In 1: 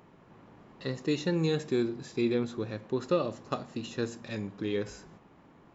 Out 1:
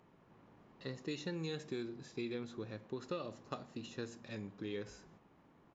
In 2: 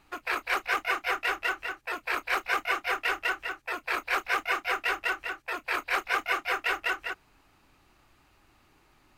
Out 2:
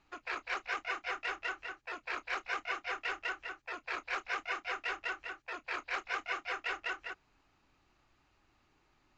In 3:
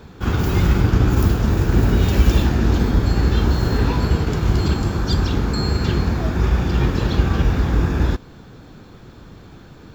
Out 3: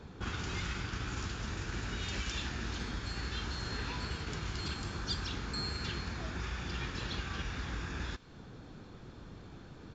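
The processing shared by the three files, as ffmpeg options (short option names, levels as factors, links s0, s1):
-filter_complex "[0:a]acrossover=split=1300[s0][s1];[s0]acompressor=threshold=0.0355:ratio=6[s2];[s2][s1]amix=inputs=2:normalize=0,aresample=16000,aresample=44100,volume=0.376"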